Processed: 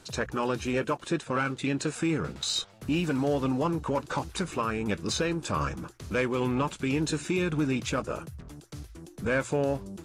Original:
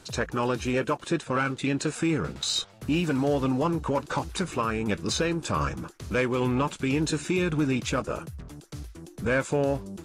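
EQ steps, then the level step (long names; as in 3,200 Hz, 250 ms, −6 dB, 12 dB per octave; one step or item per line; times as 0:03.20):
mains-hum notches 60/120 Hz
−2.0 dB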